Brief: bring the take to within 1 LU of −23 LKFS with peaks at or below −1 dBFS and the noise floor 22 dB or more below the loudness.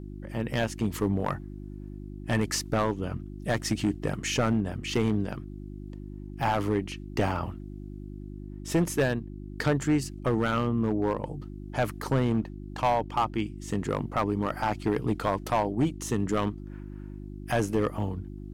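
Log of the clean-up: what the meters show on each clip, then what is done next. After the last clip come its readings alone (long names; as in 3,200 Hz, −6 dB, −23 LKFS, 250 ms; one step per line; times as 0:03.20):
share of clipped samples 1.2%; peaks flattened at −18.0 dBFS; mains hum 50 Hz; hum harmonics up to 350 Hz; level of the hum −38 dBFS; integrated loudness −29.0 LKFS; sample peak −18.0 dBFS; target loudness −23.0 LKFS
→ clipped peaks rebuilt −18 dBFS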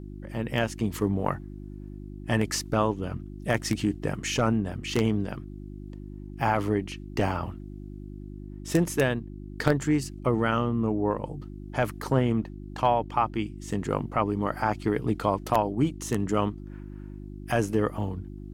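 share of clipped samples 0.0%; mains hum 50 Hz; hum harmonics up to 350 Hz; level of the hum −38 dBFS
→ hum removal 50 Hz, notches 7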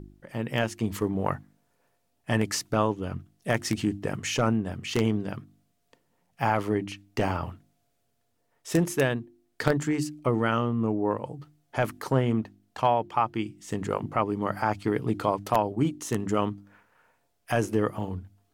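mains hum none found; integrated loudness −28.0 LKFS; sample peak −8.5 dBFS; target loudness −23.0 LKFS
→ level +5 dB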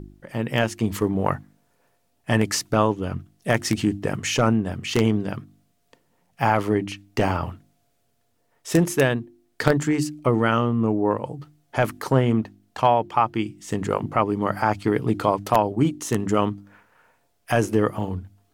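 integrated loudness −23.5 LKFS; sample peak −3.5 dBFS; background noise floor −68 dBFS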